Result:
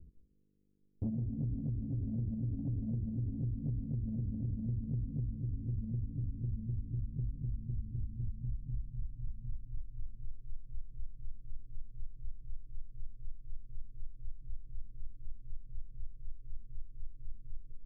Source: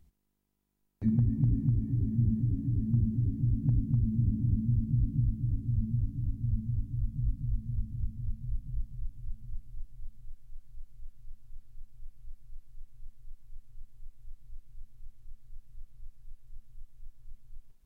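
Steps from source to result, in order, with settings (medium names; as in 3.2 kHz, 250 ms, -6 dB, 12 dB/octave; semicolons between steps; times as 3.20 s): Chebyshev low-pass 530 Hz, order 8; compression 16:1, threshold -39 dBFS, peak gain reduction 18.5 dB; saturation -35.5 dBFS, distortion -21 dB; on a send: reverberation, pre-delay 146 ms, DRR 16.5 dB; on the sum: trim +8 dB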